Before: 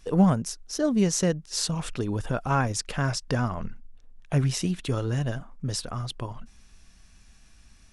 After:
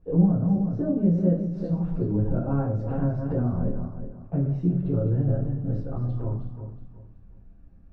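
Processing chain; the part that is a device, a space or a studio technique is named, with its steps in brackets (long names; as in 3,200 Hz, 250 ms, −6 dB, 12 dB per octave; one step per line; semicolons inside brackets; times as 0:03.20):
feedback delay that plays each chunk backwards 184 ms, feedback 53%, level −7.5 dB
television next door (downward compressor 4 to 1, threshold −24 dBFS, peak gain reduction 9 dB; low-pass filter 500 Hz 12 dB per octave; convolution reverb RT60 0.35 s, pre-delay 7 ms, DRR −8 dB)
level −4 dB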